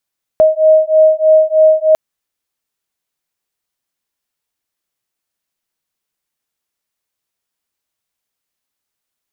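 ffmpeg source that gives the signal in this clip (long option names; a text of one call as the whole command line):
ffmpeg -f lavfi -i "aevalsrc='0.335*(sin(2*PI*626*t)+sin(2*PI*629.2*t))':duration=1.55:sample_rate=44100" out.wav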